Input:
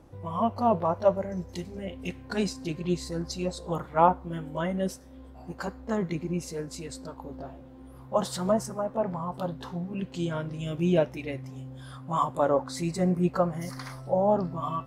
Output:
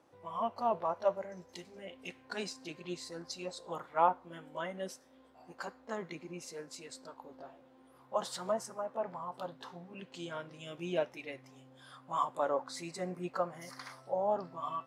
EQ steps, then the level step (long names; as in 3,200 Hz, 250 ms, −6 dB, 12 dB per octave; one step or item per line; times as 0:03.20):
meter weighting curve A
−6.0 dB